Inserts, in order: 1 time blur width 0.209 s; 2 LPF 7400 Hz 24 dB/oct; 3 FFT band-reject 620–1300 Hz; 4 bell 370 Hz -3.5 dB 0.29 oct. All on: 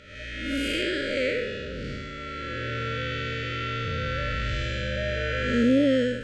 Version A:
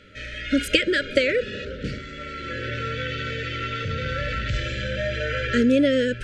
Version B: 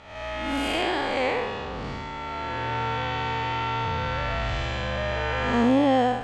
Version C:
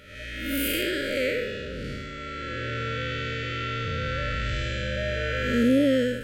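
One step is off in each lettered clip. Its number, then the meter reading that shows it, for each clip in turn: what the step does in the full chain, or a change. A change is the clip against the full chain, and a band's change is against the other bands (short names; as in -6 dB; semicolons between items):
1, 125 Hz band -2.0 dB; 3, 1 kHz band +11.0 dB; 2, 8 kHz band +5.5 dB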